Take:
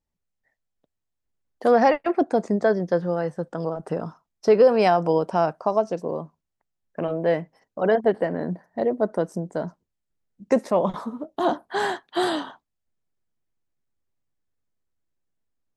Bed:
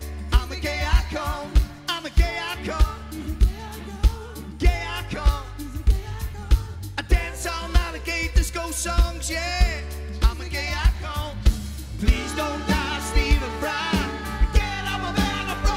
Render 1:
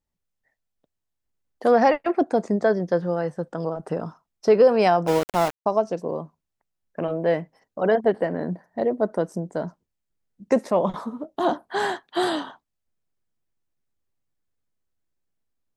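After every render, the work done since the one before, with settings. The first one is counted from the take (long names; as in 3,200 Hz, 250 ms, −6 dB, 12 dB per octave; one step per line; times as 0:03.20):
0:05.07–0:05.66: centre clipping without the shift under −24.5 dBFS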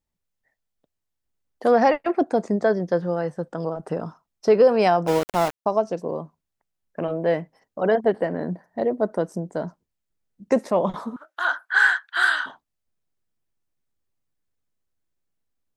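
0:11.16–0:12.46: high-pass with resonance 1,500 Hz, resonance Q 8.5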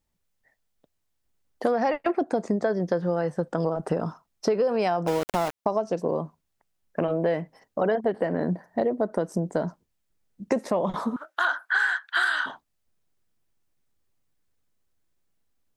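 in parallel at −2 dB: brickwall limiter −14.5 dBFS, peak gain reduction 8 dB
on the sum: downward compressor 6 to 1, threshold −21 dBFS, peak gain reduction 12 dB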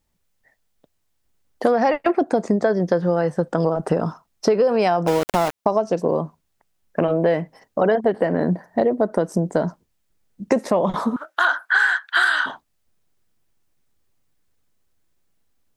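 level +6 dB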